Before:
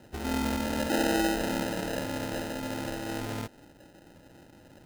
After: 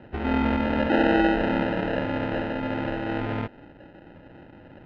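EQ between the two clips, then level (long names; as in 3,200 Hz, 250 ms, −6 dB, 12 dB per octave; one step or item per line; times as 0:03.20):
low-pass filter 2,800 Hz 24 dB per octave
+6.5 dB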